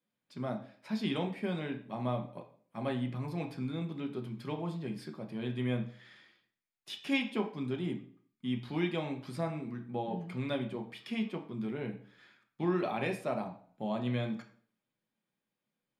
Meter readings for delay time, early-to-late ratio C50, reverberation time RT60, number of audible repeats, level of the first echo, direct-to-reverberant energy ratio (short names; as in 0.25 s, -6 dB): none, 11.0 dB, 0.50 s, none, none, 3.0 dB